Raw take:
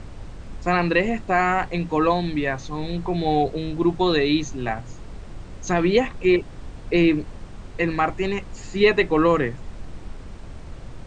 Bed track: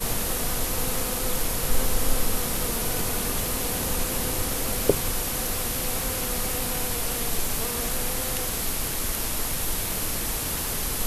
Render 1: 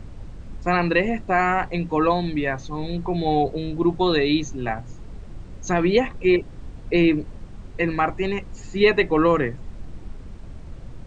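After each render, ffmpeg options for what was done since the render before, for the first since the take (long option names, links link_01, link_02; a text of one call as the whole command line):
ffmpeg -i in.wav -af "afftdn=noise_reduction=6:noise_floor=-39" out.wav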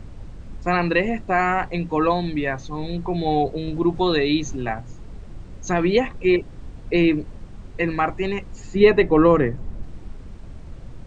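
ffmpeg -i in.wav -filter_complex "[0:a]asettb=1/sr,asplit=3[link_01][link_02][link_03];[link_01]atrim=end=3.684[link_04];[link_02]atrim=start=3.68:end=4.64,asetpts=PTS-STARTPTS,afade=type=in:duration=0.004:curve=qsin,afade=type=out:start_time=0.956:duration=0.004:curve=qsin,acompressor=mode=upward:threshold=-21dB:ratio=2.5:attack=3.2:release=140:knee=2.83:detection=peak[link_05];[link_03]atrim=start=4.636[link_06];[link_04][link_05]acrossfade=duration=0.004:curve1=hsin:curve2=qsin[link_07];[link_07][link_06]acrossfade=duration=0.004:curve1=qsin:curve2=hsin,asettb=1/sr,asplit=3[link_08][link_09][link_10];[link_08]atrim=end=8.754[link_11];[link_09]atrim=start=8.75:end=9.83,asetpts=PTS-STARTPTS,afade=type=in:duration=0.004:curve=qsin,afade=type=out:start_time=1.076:duration=0.004:curve=qsin,tiltshelf=frequency=1300:gain=4.5[link_12];[link_10]atrim=start=9.826[link_13];[link_11][link_12]acrossfade=duration=0.004:curve1=hsin:curve2=qsin[link_14];[link_14][link_13]acrossfade=duration=0.004:curve1=qsin:curve2=hsin" out.wav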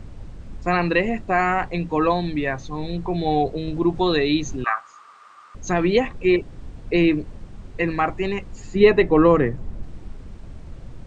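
ffmpeg -i in.wav -filter_complex "[0:a]asettb=1/sr,asplit=3[link_01][link_02][link_03];[link_01]atrim=end=4.644[link_04];[link_02]atrim=start=4.64:end=5.55,asetpts=PTS-STARTPTS,afade=type=in:duration=0.004:curve=qsin,afade=type=out:start_time=0.906:duration=0.004:curve=qsin,highpass=frequency=1200:width_type=q:width=13[link_05];[link_03]atrim=start=5.546[link_06];[link_04][link_05]acrossfade=duration=0.004:curve1=hsin:curve2=qsin[link_07];[link_07][link_06]acrossfade=duration=0.004:curve1=qsin:curve2=hsin" out.wav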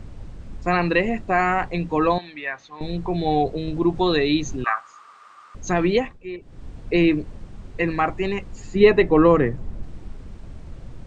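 ffmpeg -i in.wav -filter_complex "[0:a]asettb=1/sr,asplit=3[link_01][link_02][link_03];[link_01]atrim=end=2.184[link_04];[link_02]atrim=start=2.18:end=2.81,asetpts=PTS-STARTPTS,afade=type=in:duration=0.004:curve=qsin,afade=type=out:start_time=0.626:duration=0.004:curve=qsin,bandpass=frequency=2000:width_type=q:width=0.91[link_05];[link_03]atrim=start=2.806[link_06];[link_04][link_05]acrossfade=duration=0.004:curve1=hsin:curve2=qsin[link_07];[link_07][link_06]acrossfade=duration=0.004:curve1=qsin:curve2=hsin,asplit=3[link_08][link_09][link_10];[link_08]atrim=end=6.18,asetpts=PTS-STARTPTS,afade=type=out:start_time=5.81:duration=0.37:curve=qsin:silence=0.16788[link_11];[link_09]atrim=start=6.18:end=6.4,asetpts=PTS-STARTPTS,volume=-15.5dB[link_12];[link_10]atrim=start=6.4,asetpts=PTS-STARTPTS,afade=type=in:duration=0.37:curve=qsin:silence=0.16788[link_13];[link_11][link_12][link_13]concat=n=3:v=0:a=1" out.wav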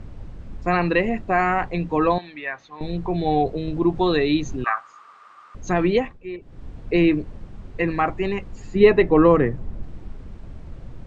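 ffmpeg -i in.wav -af "aemphasis=mode=reproduction:type=cd" out.wav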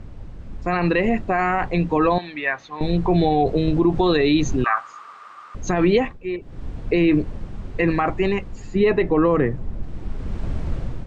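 ffmpeg -i in.wav -af "dynaudnorm=framelen=290:gausssize=5:maxgain=15dB,alimiter=limit=-9dB:level=0:latency=1:release=46" out.wav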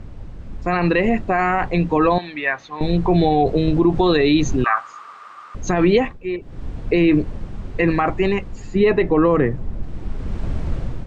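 ffmpeg -i in.wav -af "volume=2dB" out.wav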